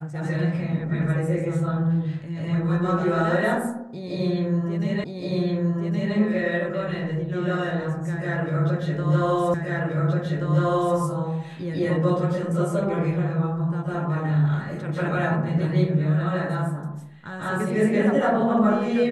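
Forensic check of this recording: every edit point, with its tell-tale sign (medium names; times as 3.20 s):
5.04 s: repeat of the last 1.12 s
9.54 s: repeat of the last 1.43 s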